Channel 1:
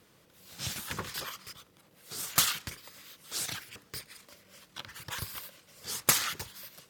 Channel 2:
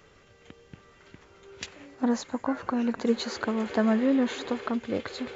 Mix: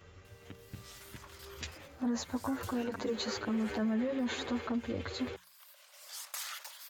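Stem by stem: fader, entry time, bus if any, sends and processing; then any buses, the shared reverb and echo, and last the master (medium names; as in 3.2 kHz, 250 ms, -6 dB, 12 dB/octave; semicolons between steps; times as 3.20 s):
2.44 s -6 dB -> 3.16 s -15.5 dB, 0.25 s, no send, Chebyshev high-pass 580 Hz, order 5; level flattener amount 50%; auto duck -18 dB, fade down 0.30 s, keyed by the second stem
+1.0 dB, 0.00 s, no send, peak limiter -21.5 dBFS, peak gain reduction 8.5 dB; endless flanger 8.4 ms +0.39 Hz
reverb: none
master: peaking EQ 78 Hz +13.5 dB 1 oct; hum notches 60/120/180 Hz; peak limiter -26 dBFS, peak gain reduction 6 dB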